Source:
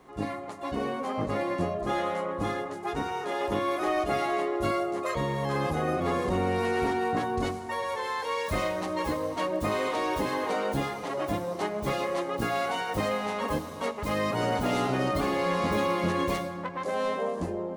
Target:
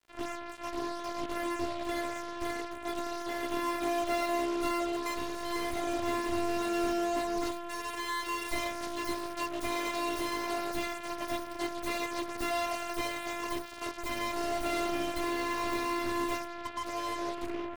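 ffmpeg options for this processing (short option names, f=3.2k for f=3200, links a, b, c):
-filter_complex "[0:a]acrossover=split=310|1800|1900[a][b][c][d];[d]dynaudnorm=f=800:g=11:m=4.5dB[e];[a][b][c][e]amix=inputs=4:normalize=0,afreqshift=-30,aeval=exprs='val(0)+0.00631*(sin(2*PI*60*n/s)+sin(2*PI*2*60*n/s)/2+sin(2*PI*3*60*n/s)/3+sin(2*PI*4*60*n/s)/4+sin(2*PI*5*60*n/s)/5)':c=same,afftfilt=real='hypot(re,im)*cos(PI*b)':imag='0':win_size=512:overlap=0.75,acrusher=bits=5:mix=0:aa=0.5,volume=-1.5dB"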